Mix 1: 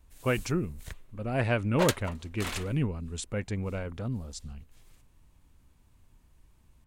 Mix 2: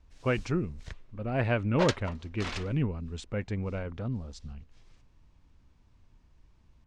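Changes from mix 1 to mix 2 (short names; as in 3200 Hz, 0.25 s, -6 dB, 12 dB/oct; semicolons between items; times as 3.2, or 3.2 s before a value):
background: add bell 5400 Hz +6.5 dB 0.67 oct; master: add air absorption 130 m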